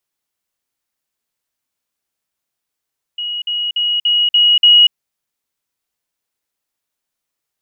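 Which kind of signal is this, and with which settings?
level ladder 2900 Hz -19.5 dBFS, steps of 3 dB, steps 6, 0.24 s 0.05 s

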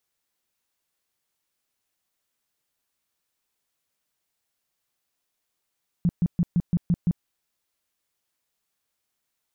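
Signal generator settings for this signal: tone bursts 173 Hz, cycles 7, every 0.17 s, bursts 7, -17 dBFS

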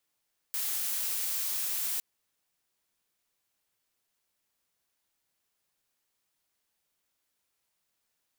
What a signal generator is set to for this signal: noise blue, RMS -32 dBFS 1.46 s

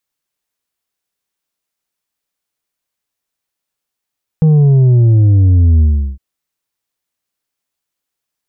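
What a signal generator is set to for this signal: sub drop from 160 Hz, over 1.76 s, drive 5 dB, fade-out 0.37 s, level -6 dB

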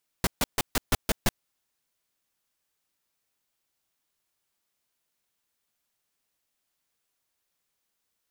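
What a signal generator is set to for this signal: noise bursts pink, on 0.03 s, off 0.14 s, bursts 7, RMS -22.5 dBFS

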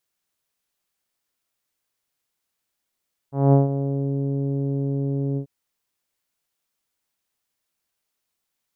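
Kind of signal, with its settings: synth note saw C#3 24 dB/oct, low-pass 450 Hz, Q 1.1, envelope 1 oct, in 0.80 s, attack 0.208 s, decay 0.15 s, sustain -11 dB, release 0.09 s, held 2.05 s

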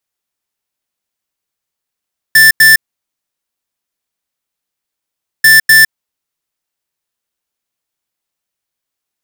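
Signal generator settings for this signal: beep pattern square 1770 Hz, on 0.16 s, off 0.09 s, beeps 2, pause 2.68 s, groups 2, -4.5 dBFS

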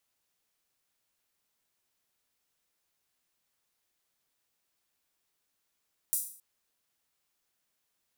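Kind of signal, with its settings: open hi-hat length 0.27 s, high-pass 9000 Hz, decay 0.49 s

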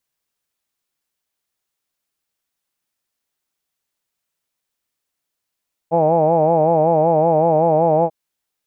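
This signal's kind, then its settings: formant-synthesis vowel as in hawed, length 2.19 s, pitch 161 Hz, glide 0 st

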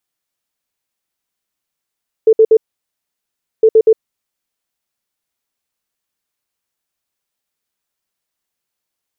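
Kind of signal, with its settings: beep pattern sine 442 Hz, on 0.06 s, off 0.06 s, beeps 3, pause 1.06 s, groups 2, -4 dBFS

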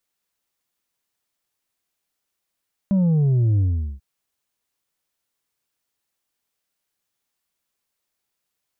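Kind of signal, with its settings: sub drop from 200 Hz, over 1.09 s, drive 4 dB, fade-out 0.41 s, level -15.5 dB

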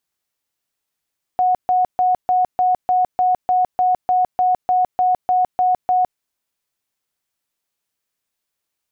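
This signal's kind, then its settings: tone bursts 733 Hz, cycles 116, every 0.30 s, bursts 16, -12.5 dBFS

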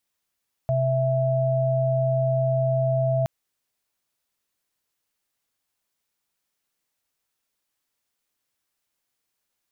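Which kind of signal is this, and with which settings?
chord C3/E5 sine, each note -22 dBFS 2.57 s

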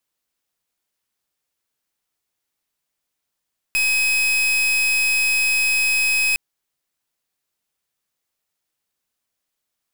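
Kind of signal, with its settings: pulse 2540 Hz, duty 40% -18.5 dBFS 2.61 s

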